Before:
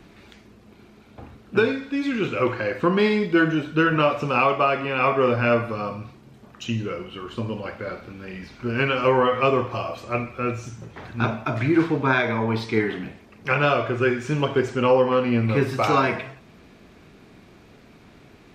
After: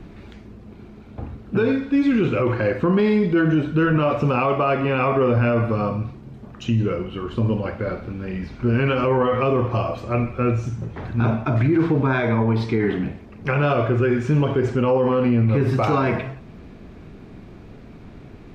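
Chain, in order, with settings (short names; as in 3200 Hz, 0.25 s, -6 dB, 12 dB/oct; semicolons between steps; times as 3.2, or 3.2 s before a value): tilt -2.5 dB/oct; limiter -14 dBFS, peak gain reduction 9.5 dB; gain +3 dB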